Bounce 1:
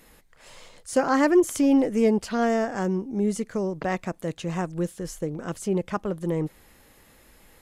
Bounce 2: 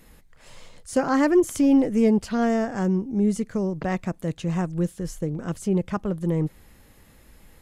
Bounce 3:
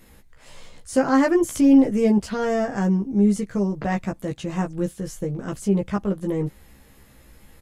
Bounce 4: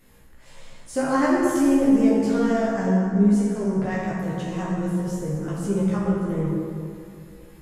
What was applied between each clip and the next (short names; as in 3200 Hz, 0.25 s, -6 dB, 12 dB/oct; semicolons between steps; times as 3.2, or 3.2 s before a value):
tone controls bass +8 dB, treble 0 dB; gain -1.5 dB
doubler 15 ms -3 dB
plate-style reverb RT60 2.5 s, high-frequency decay 0.55×, DRR -5 dB; gain -6.5 dB